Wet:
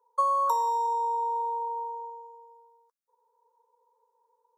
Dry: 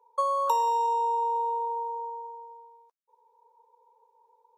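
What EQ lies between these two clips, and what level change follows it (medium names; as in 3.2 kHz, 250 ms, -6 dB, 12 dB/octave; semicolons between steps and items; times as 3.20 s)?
peaking EQ 620 Hz -6.5 dB 0.85 oct; dynamic bell 920 Hz, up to +6 dB, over -40 dBFS, Q 1.4; static phaser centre 530 Hz, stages 8; 0.0 dB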